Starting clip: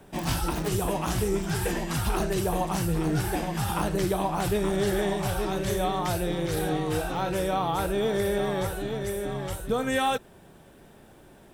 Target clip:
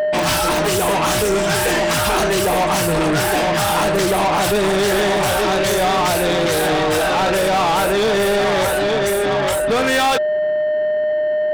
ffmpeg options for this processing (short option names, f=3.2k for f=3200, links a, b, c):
-filter_complex "[0:a]afftfilt=real='re*gte(hypot(re,im),0.00631)':imag='im*gte(hypot(re,im),0.00631)':win_size=1024:overlap=0.75,aeval=exprs='0.168*(cos(1*acos(clip(val(0)/0.168,-1,1)))-cos(1*PI/2))+0.00376*(cos(2*acos(clip(val(0)/0.168,-1,1)))-cos(2*PI/2))':c=same,aeval=exprs='val(0)+0.02*sin(2*PI*610*n/s)':c=same,asplit=2[a][b];[b]highpass=f=720:p=1,volume=28dB,asoftclip=type=tanh:threshold=-14.5dB[c];[a][c]amix=inputs=2:normalize=0,lowpass=f=6.9k:p=1,volume=-6dB,volume=4dB"